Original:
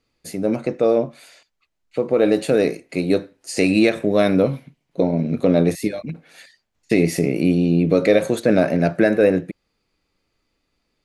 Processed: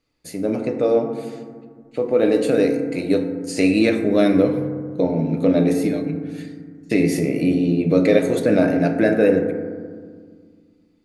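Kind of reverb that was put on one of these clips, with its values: FDN reverb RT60 1.8 s, low-frequency decay 1.45×, high-frequency decay 0.3×, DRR 4 dB; gain -2.5 dB

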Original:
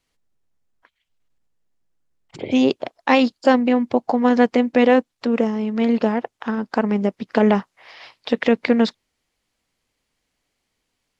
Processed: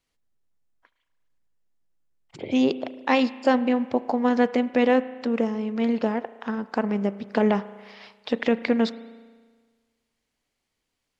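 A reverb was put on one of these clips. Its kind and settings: spring tank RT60 1.5 s, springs 35 ms, chirp 75 ms, DRR 15 dB; gain -5 dB

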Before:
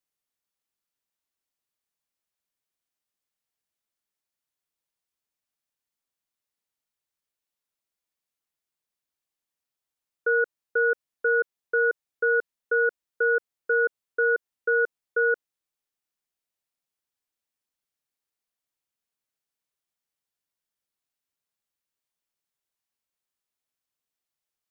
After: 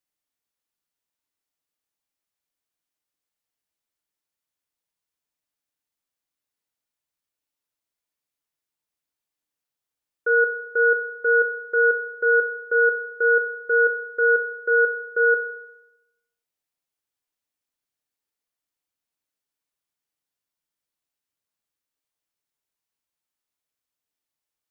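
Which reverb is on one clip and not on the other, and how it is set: FDN reverb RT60 0.92 s, low-frequency decay 1.05×, high-frequency decay 0.4×, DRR 8 dB

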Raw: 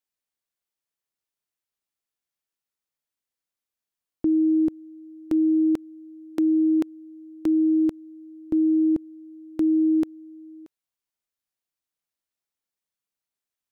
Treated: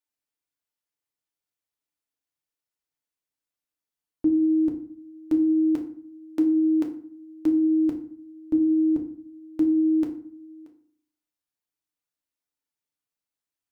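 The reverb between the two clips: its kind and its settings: FDN reverb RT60 0.53 s, low-frequency decay 1.35×, high-frequency decay 0.65×, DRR 2 dB; gain -4 dB

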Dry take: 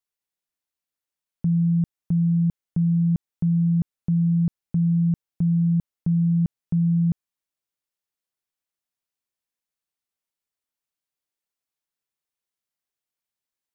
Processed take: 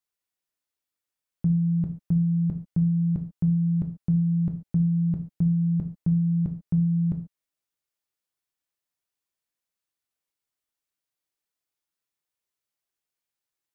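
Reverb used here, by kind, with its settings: non-linear reverb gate 0.16 s falling, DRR 3.5 dB; gain -1 dB

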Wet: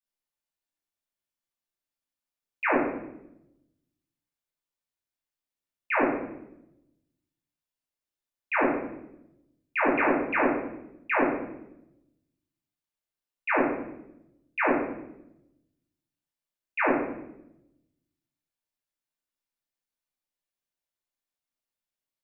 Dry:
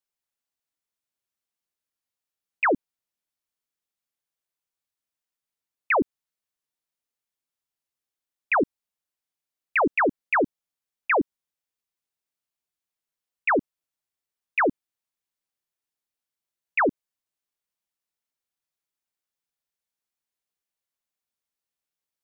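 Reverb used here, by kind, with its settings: shoebox room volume 270 m³, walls mixed, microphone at 2.6 m; gain -10.5 dB

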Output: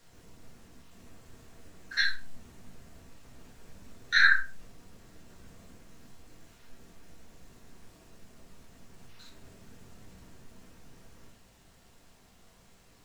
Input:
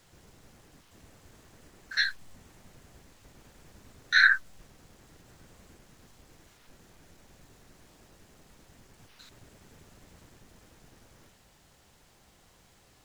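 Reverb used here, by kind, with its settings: shoebox room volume 220 m³, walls furnished, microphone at 1.7 m; gain -3 dB

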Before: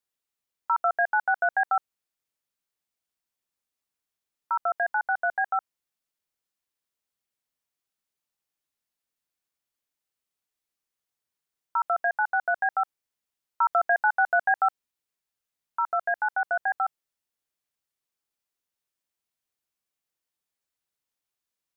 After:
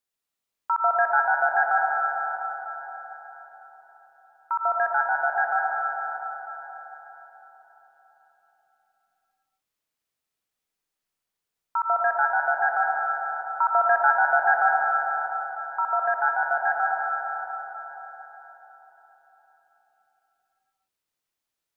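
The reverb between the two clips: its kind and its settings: digital reverb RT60 4.6 s, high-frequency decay 0.6×, pre-delay 60 ms, DRR -1.5 dB

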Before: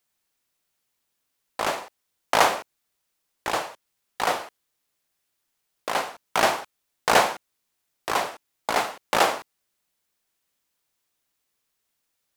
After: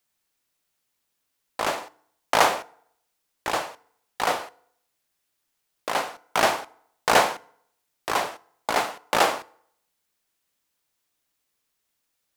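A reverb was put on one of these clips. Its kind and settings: FDN reverb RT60 0.69 s, low-frequency decay 0.9×, high-frequency decay 0.7×, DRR 18.5 dB

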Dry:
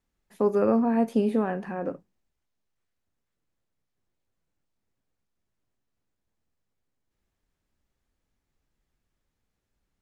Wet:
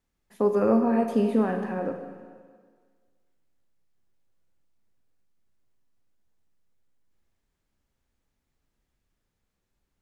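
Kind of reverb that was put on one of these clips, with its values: Schroeder reverb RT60 1.7 s, combs from 32 ms, DRR 5.5 dB

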